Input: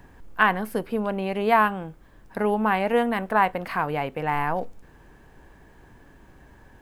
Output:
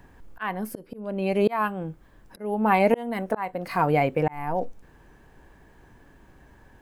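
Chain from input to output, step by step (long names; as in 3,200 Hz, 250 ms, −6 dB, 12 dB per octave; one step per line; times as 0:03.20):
noise reduction from a noise print of the clip's start 9 dB
volume swells 538 ms
level +7 dB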